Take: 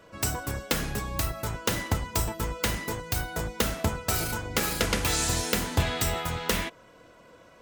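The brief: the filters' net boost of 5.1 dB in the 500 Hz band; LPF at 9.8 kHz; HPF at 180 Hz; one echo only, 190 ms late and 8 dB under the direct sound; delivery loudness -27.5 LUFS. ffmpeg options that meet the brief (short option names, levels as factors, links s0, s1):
-af "highpass=180,lowpass=9800,equalizer=f=500:t=o:g=6,aecho=1:1:190:0.398,volume=1.12"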